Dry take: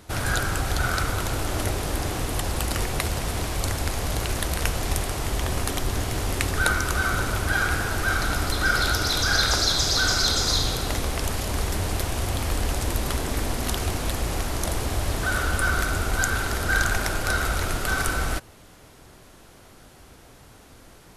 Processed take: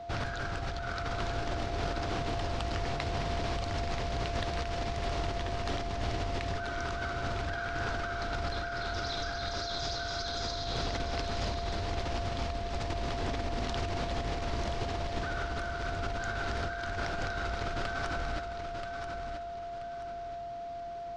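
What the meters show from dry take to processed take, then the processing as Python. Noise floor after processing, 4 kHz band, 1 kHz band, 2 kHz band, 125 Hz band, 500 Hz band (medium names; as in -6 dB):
-40 dBFS, -12.0 dB, -6.0 dB, -12.0 dB, -9.0 dB, -3.5 dB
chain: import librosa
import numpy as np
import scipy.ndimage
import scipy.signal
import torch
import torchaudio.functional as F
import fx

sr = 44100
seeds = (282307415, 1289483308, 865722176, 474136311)

y = scipy.signal.sosfilt(scipy.signal.butter(4, 5300.0, 'lowpass', fs=sr, output='sos'), x)
y = fx.over_compress(y, sr, threshold_db=-28.0, ratio=-1.0)
y = y + 10.0 ** (-33.0 / 20.0) * np.sin(2.0 * np.pi * 690.0 * np.arange(len(y)) / sr)
y = fx.echo_feedback(y, sr, ms=981, feedback_pct=32, wet_db=-7.0)
y = F.gain(torch.from_numpy(y), -7.5).numpy()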